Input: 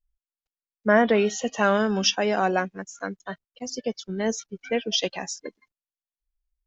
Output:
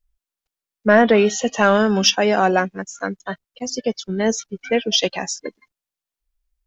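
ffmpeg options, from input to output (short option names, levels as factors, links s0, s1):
-af "acontrast=44,volume=1.12"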